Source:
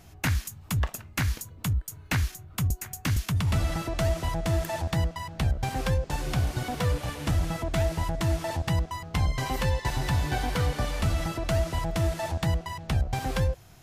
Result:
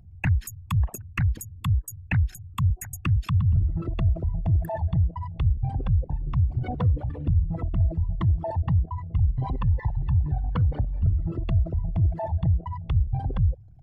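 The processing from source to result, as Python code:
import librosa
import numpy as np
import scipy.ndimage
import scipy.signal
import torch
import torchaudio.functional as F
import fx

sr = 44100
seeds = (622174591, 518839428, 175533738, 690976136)

y = fx.envelope_sharpen(x, sr, power=3.0)
y = fx.peak_eq(y, sr, hz=95.0, db=4.5, octaves=0.81)
y = fx.notch(y, sr, hz=6000.0, q=5.3)
y = y * librosa.db_to_amplitude(1.5)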